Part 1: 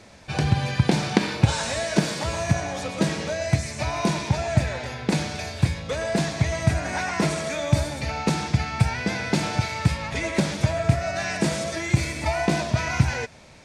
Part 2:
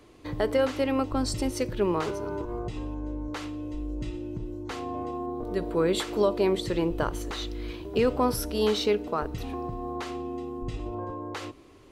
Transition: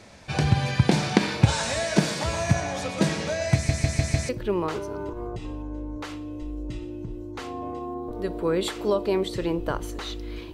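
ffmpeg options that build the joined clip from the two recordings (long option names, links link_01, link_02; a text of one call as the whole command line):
ffmpeg -i cue0.wav -i cue1.wav -filter_complex "[0:a]apad=whole_dur=10.53,atrim=end=10.53,asplit=5[link_01][link_02][link_03][link_04][link_05];[link_01]atrim=end=3.692[link_06];[link_02]atrim=start=3.538:end=3.692[link_07];[link_03]atrim=start=3.538:end=3.692[link_08];[link_04]atrim=start=3.538:end=3.692[link_09];[link_05]atrim=start=3.538:end=3.692[link_10];[1:a]atrim=start=1.608:end=7.85[link_11];[link_06][link_07]acrossfade=duration=0.004:curve1=hsin:curve2=hsin[link_12];[link_12][link_08]acrossfade=duration=0.004:curve1=hsin:curve2=hsin[link_13];[link_13][link_09]acrossfade=duration=0.004:curve1=hsin:curve2=hsin[link_14];[link_14][link_10]acrossfade=duration=0.004:curve1=hsin:curve2=hsin[link_15];[link_15][link_11]acrossfade=duration=0.004:curve1=hsin:curve2=hsin" out.wav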